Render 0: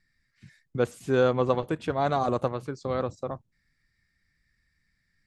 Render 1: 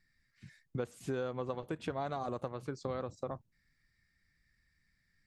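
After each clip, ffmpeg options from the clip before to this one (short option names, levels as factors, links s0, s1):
-af "acompressor=threshold=0.0282:ratio=8,volume=0.75"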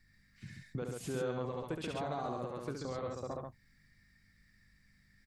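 -filter_complex "[0:a]alimiter=level_in=3.16:limit=0.0631:level=0:latency=1:release=164,volume=0.316,aeval=exprs='val(0)+0.0002*(sin(2*PI*50*n/s)+sin(2*PI*2*50*n/s)/2+sin(2*PI*3*50*n/s)/3+sin(2*PI*4*50*n/s)/4+sin(2*PI*5*50*n/s)/5)':c=same,asplit=2[s0][s1];[s1]aecho=0:1:69|135:0.562|0.631[s2];[s0][s2]amix=inputs=2:normalize=0,volume=1.68"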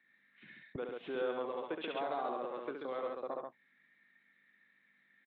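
-filter_complex "[0:a]acrossover=split=270|1900[s0][s1][s2];[s0]acrusher=bits=4:mix=0:aa=0.5[s3];[s2]aresample=8000,aresample=44100[s4];[s3][s1][s4]amix=inputs=3:normalize=0,volume=1.26"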